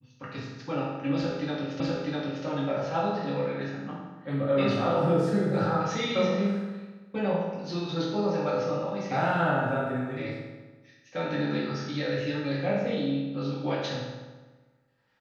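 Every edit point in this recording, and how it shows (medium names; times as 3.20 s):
1.80 s: repeat of the last 0.65 s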